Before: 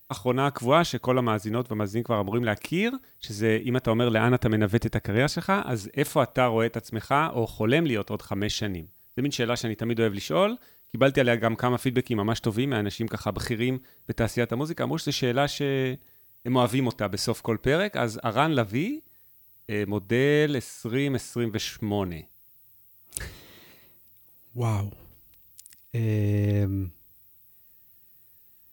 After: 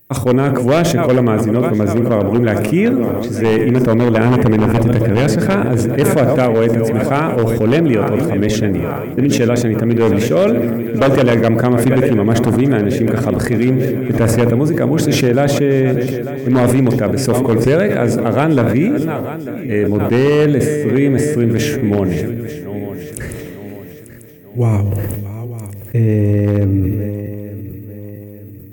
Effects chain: backward echo that repeats 447 ms, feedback 67%, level -13.5 dB; ten-band graphic EQ 125 Hz +8 dB, 250 Hz +7 dB, 500 Hz +9 dB, 1 kHz -3 dB, 2 kHz +7 dB, 4 kHz -12 dB, 8 kHz +3 dB; wavefolder -7 dBFS; feedback echo behind a low-pass 60 ms, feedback 59%, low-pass 830 Hz, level -14 dB; loudness maximiser +8.5 dB; decay stretcher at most 23 dB/s; trim -4 dB

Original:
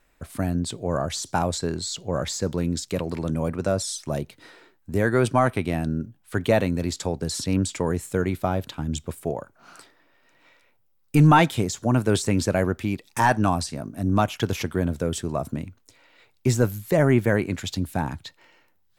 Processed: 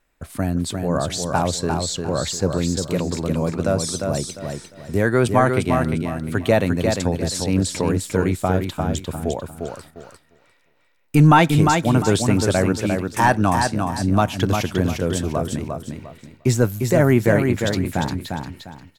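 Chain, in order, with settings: feedback delay 351 ms, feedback 29%, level -5 dB; gate -47 dBFS, range -7 dB; trim +3 dB

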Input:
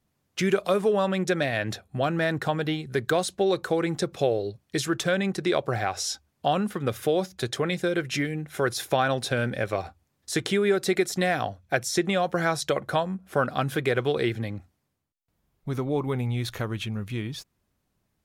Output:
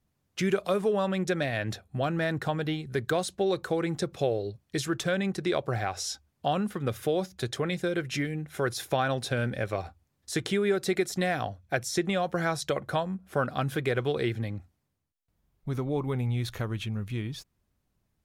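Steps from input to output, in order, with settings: bass shelf 110 Hz +7.5 dB; trim -4 dB

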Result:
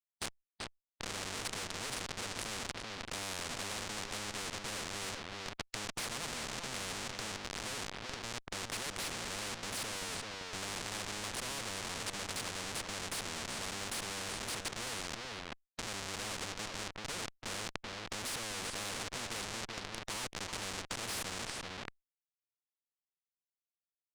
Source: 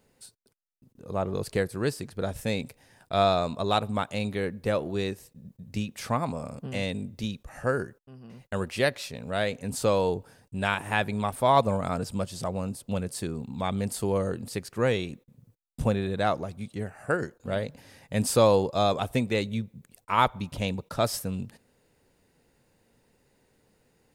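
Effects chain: rippled EQ curve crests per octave 0.94, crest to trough 10 dB; in parallel at +2.5 dB: peak limiter -16 dBFS, peak gain reduction 9 dB; on the sum: compression 2:1, threshold -27 dBFS, peak gain reduction 10 dB; Schmitt trigger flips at -31.5 dBFS; distance through air 97 m; echo from a far wall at 66 m, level -8 dB; spectrum-flattening compressor 4:1; trim +1 dB

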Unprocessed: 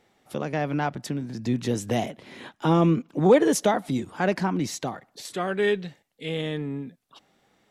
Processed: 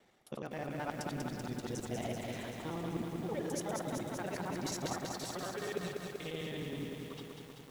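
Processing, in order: time reversed locally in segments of 53 ms; reverse; compression 8:1, threshold -34 dBFS, peak gain reduction 21 dB; reverse; flange 0.3 Hz, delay 5.2 ms, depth 3.3 ms, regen -75%; harmonic-percussive split harmonic -4 dB; reverberation RT60 3.5 s, pre-delay 78 ms, DRR 12 dB; bit-crushed delay 192 ms, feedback 80%, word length 10-bit, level -3.5 dB; trim +3 dB

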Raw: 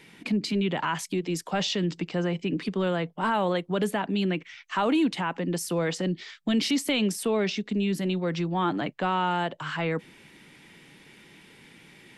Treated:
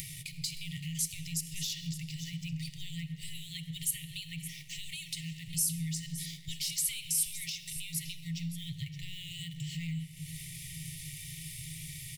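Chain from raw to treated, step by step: upward compressor, threshold -38 dBFS; FFT band-reject 170–1800 Hz; on a send at -9 dB: reverberation RT60 1.9 s, pre-delay 6 ms; on the sum: waveshaping leveller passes 1; bass shelf 200 Hz +9 dB; de-hum 150.7 Hz, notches 32; compression 3:1, threshold -37 dBFS, peak gain reduction 10.5 dB; FFT filter 170 Hz 0 dB, 480 Hz -5 dB, 1.3 kHz -15 dB, 11 kHz +13 dB; delay 569 ms -13 dB

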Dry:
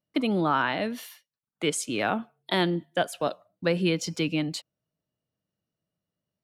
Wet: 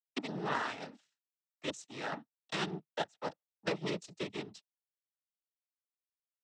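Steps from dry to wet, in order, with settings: power-law waveshaper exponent 2; noise-vocoded speech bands 12; trim -4.5 dB

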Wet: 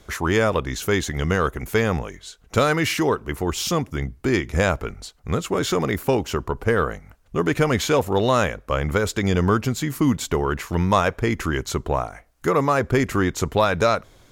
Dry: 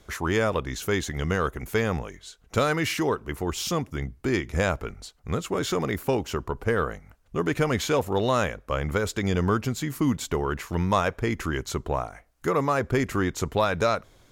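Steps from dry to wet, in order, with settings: trim +4.5 dB

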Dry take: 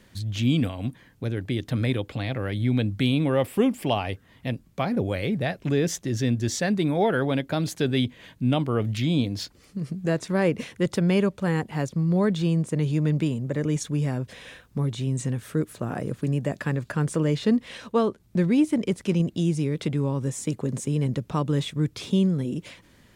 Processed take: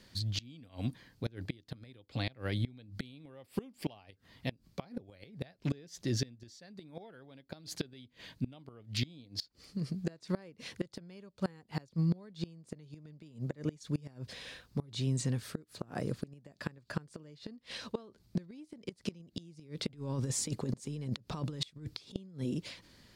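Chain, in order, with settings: peaking EQ 4.6 kHz +11.5 dB 0.56 oct; 19.87–22.16 s: compressor with a negative ratio -28 dBFS, ratio -0.5; inverted gate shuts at -16 dBFS, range -25 dB; trim -5.5 dB

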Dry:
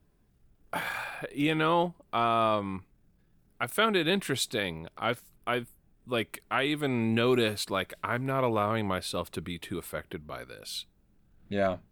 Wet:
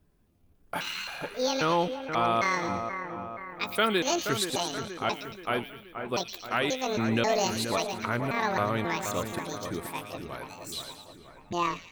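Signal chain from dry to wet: pitch shift switched off and on +9.5 st, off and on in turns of 268 ms; two-band feedback delay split 2.2 kHz, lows 477 ms, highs 113 ms, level -7.5 dB

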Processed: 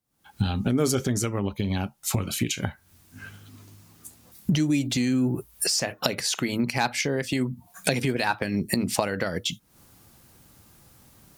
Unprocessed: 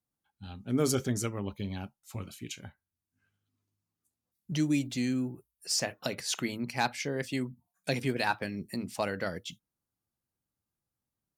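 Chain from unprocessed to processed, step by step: recorder AGC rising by 76 dB/s; trim +4 dB

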